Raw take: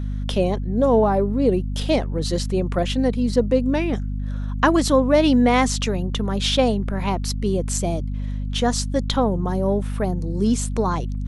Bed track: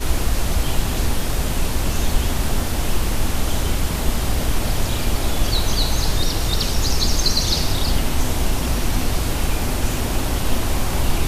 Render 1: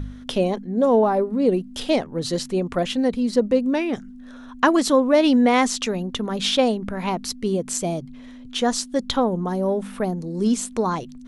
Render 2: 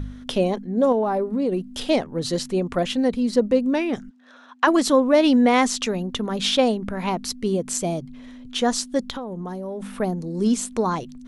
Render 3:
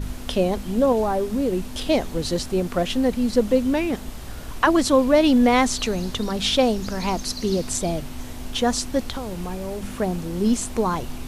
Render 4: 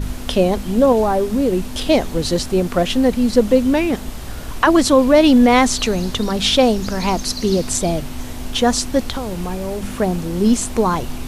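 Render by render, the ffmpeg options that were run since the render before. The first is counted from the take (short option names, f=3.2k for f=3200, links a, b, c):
-af "bandreject=f=50:t=h:w=4,bandreject=f=100:t=h:w=4,bandreject=f=150:t=h:w=4,bandreject=f=200:t=h:w=4"
-filter_complex "[0:a]asettb=1/sr,asplit=3[a][b][c];[a]atrim=end=0.924[d];[b]atrim=start=0.92:end=1.73,asetpts=PTS-STARTPTS,afade=t=in:d=0.004:c=qsin,afade=t=out:st=0.806:d=0.004:c=qsin,acompressor=threshold=-19dB:ratio=4:attack=3.2:release=140:knee=1:detection=peak[e];[c]atrim=start=1.726[f];[d][e]acrossfade=d=0.004:c1=hsin:c2=qsin[g];[g][f]acrossfade=d=0.004:c1=qsin:c2=hsin,asplit=3[h][i][j];[h]afade=t=out:st=4.09:d=0.02[k];[i]highpass=580,lowpass=5.8k,afade=t=in:st=4.09:d=0.02,afade=t=out:st=4.66:d=0.02[l];[j]afade=t=in:st=4.66:d=0.02[m];[k][l][m]amix=inputs=3:normalize=0,asplit=3[n][o][p];[n]afade=t=out:st=9.04:d=0.02[q];[o]acompressor=threshold=-27dB:ratio=12:attack=3.2:release=140:knee=1:detection=peak,afade=t=in:st=9.04:d=0.02,afade=t=out:st=9.8:d=0.02[r];[p]afade=t=in:st=9.8:d=0.02[s];[q][r][s]amix=inputs=3:normalize=0"
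-filter_complex "[1:a]volume=-15dB[a];[0:a][a]amix=inputs=2:normalize=0"
-af "volume=5.5dB,alimiter=limit=-2dB:level=0:latency=1"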